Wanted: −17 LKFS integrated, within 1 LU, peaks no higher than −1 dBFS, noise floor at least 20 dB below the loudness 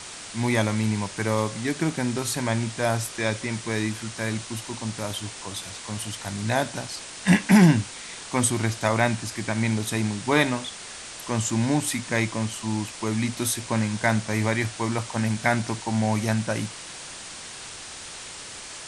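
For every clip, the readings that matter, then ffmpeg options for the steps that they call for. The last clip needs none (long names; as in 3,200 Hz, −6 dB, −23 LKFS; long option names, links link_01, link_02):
background noise floor −40 dBFS; target noise floor −46 dBFS; integrated loudness −25.5 LKFS; sample peak −5.5 dBFS; target loudness −17.0 LKFS
→ -af "afftdn=noise_reduction=6:noise_floor=-40"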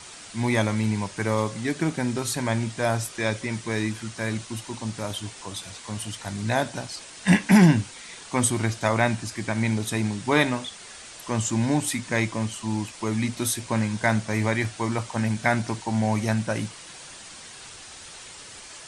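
background noise floor −43 dBFS; target noise floor −46 dBFS
→ -af "afftdn=noise_reduction=6:noise_floor=-43"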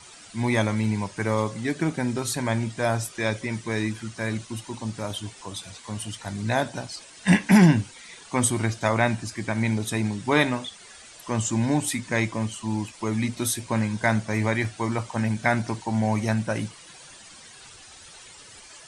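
background noise floor −47 dBFS; integrated loudness −25.5 LKFS; sample peak −5.5 dBFS; target loudness −17.0 LKFS
→ -af "volume=8.5dB,alimiter=limit=-1dB:level=0:latency=1"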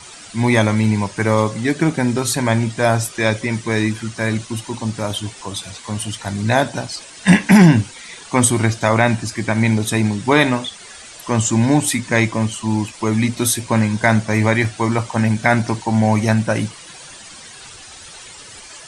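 integrated loudness −17.5 LKFS; sample peak −1.0 dBFS; background noise floor −39 dBFS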